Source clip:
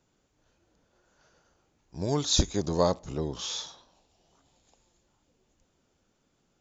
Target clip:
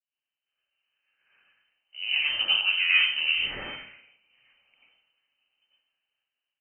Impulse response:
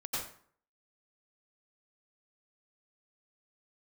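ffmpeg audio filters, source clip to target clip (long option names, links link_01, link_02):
-filter_complex "[0:a]agate=range=-33dB:threshold=-60dB:ratio=3:detection=peak,aeval=exprs='0.398*(cos(1*acos(clip(val(0)/0.398,-1,1)))-cos(1*PI/2))+0.0794*(cos(3*acos(clip(val(0)/0.398,-1,1)))-cos(3*PI/2))+0.00794*(cos(5*acos(clip(val(0)/0.398,-1,1)))-cos(5*PI/2))+0.02*(cos(6*acos(clip(val(0)/0.398,-1,1)))-cos(6*PI/2))':channel_layout=same,areverse,acompressor=threshold=-33dB:ratio=6,areverse,lowpass=frequency=2600:width_type=q:width=0.5098,lowpass=frequency=2600:width_type=q:width=0.6013,lowpass=frequency=2600:width_type=q:width=0.9,lowpass=frequency=2600:width_type=q:width=2.563,afreqshift=-3100[link_01];[1:a]atrim=start_sample=2205[link_02];[link_01][link_02]afir=irnorm=-1:irlink=0,dynaudnorm=framelen=650:gausssize=5:maxgain=11.5dB,volume=2dB"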